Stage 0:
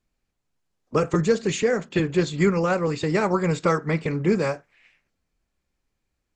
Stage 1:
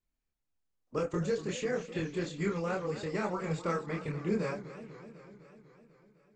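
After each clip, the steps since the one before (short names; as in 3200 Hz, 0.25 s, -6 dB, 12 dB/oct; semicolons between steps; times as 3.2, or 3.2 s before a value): chorus voices 4, 0.82 Hz, delay 26 ms, depth 2.4 ms; warbling echo 0.25 s, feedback 68%, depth 170 cents, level -14 dB; gain -8.5 dB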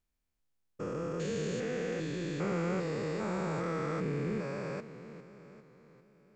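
stepped spectrum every 0.4 s; gain +3 dB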